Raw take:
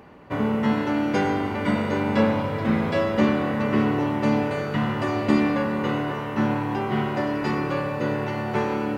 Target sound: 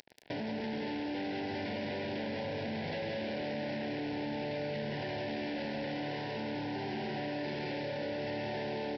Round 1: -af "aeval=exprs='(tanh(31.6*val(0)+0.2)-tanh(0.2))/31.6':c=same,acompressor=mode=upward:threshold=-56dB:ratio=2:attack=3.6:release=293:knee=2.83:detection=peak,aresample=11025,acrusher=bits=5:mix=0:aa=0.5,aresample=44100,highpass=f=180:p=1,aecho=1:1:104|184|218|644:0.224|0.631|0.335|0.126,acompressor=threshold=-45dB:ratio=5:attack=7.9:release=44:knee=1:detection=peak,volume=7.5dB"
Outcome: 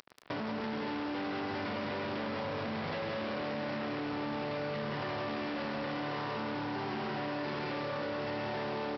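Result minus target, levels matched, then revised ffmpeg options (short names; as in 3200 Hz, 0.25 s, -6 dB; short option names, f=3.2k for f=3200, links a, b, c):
1000 Hz band +3.0 dB
-af "aeval=exprs='(tanh(31.6*val(0)+0.2)-tanh(0.2))/31.6':c=same,acompressor=mode=upward:threshold=-56dB:ratio=2:attack=3.6:release=293:knee=2.83:detection=peak,aresample=11025,acrusher=bits=5:mix=0:aa=0.5,aresample=44100,highpass=f=180:p=1,aecho=1:1:104|184|218|644:0.224|0.631|0.335|0.126,acompressor=threshold=-45dB:ratio=5:attack=7.9:release=44:knee=1:detection=peak,asuperstop=centerf=1200:order=4:qfactor=1.6,volume=7.5dB"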